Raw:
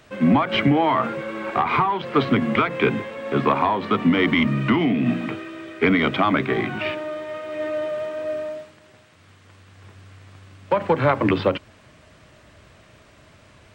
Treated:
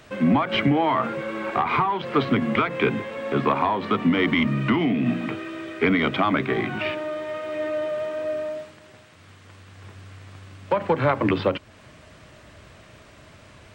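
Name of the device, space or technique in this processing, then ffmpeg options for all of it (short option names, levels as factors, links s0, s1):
parallel compression: -filter_complex "[0:a]asplit=2[s0][s1];[s1]acompressor=threshold=0.0251:ratio=6,volume=1[s2];[s0][s2]amix=inputs=2:normalize=0,volume=0.668"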